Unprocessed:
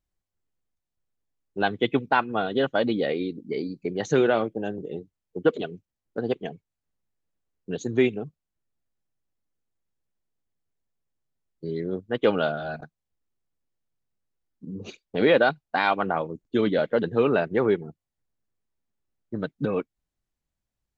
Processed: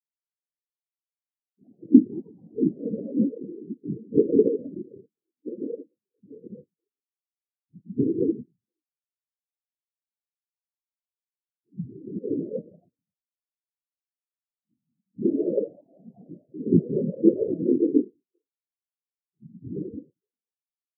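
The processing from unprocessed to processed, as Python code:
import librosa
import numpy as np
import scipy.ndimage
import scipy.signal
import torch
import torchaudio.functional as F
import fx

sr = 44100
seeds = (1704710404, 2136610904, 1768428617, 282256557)

p1 = scipy.signal.sosfilt(scipy.signal.ellip(4, 1.0, 40, 2400.0, 'lowpass', fs=sr, output='sos'), x)
p2 = fx.comb_fb(p1, sr, f0_hz=200.0, decay_s=1.4, harmonics='all', damping=0.0, mix_pct=50)
p3 = fx.rev_gated(p2, sr, seeds[0], gate_ms=370, shape='flat', drr_db=-6.0)
p4 = fx.level_steps(p3, sr, step_db=17)
p5 = p3 + (p4 * 10.0 ** (0.0 / 20.0))
p6 = fx.notch(p5, sr, hz=790.0, q=22.0)
p7 = p6 + fx.echo_single(p6, sr, ms=402, db=-12.0, dry=0)
p8 = fx.env_flanger(p7, sr, rest_ms=10.5, full_db=-21.5)
p9 = fx.low_shelf(p8, sr, hz=330.0, db=9.0)
p10 = fx.whisperise(p9, sr, seeds[1])
p11 = scipy.signal.sosfilt(scipy.signal.butter(2, 97.0, 'highpass', fs=sr, output='sos'), p10)
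p12 = fx.tilt_shelf(p11, sr, db=5.5, hz=650.0)
p13 = fx.spectral_expand(p12, sr, expansion=4.0)
y = p13 * 10.0 ** (1.0 / 20.0)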